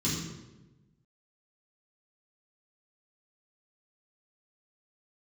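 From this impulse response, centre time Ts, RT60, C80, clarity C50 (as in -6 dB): 62 ms, 1.1 s, 4.0 dB, 2.0 dB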